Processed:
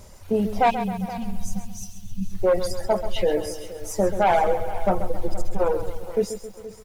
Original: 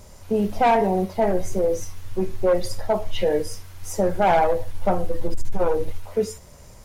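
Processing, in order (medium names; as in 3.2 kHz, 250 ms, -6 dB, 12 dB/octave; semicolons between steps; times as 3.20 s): reverb removal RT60 1.7 s; spectral selection erased 0.70–2.32 s, 270–2500 Hz; on a send: feedback delay 473 ms, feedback 23%, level -16 dB; on the sum: bit-crushed delay 134 ms, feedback 55%, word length 8-bit, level -10.5 dB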